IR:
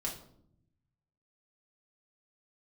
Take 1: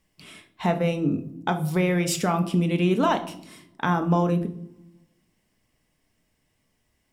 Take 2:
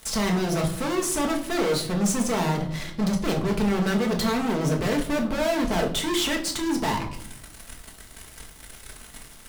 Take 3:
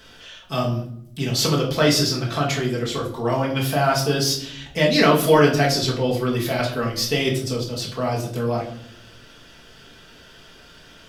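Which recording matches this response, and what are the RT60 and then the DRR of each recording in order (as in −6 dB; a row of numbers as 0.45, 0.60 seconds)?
3; 0.70, 0.70, 0.70 seconds; 6.0, 1.0, −3.0 decibels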